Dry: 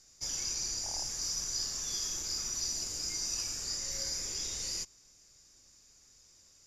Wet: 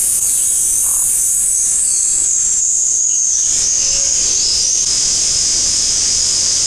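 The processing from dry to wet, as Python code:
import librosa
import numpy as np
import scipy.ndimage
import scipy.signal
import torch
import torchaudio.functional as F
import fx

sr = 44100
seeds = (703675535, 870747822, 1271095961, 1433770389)

y = fx.wow_flutter(x, sr, seeds[0], rate_hz=2.1, depth_cents=29.0)
y = fx.filter_sweep_lowpass(y, sr, from_hz=9000.0, to_hz=4000.0, start_s=1.24, end_s=3.7, q=6.8)
y = fx.formant_shift(y, sr, semitones=5)
y = fx.high_shelf(y, sr, hz=3400.0, db=9.0)
y = fx.env_flatten(y, sr, amount_pct=100)
y = y * 10.0 ** (-1.0 / 20.0)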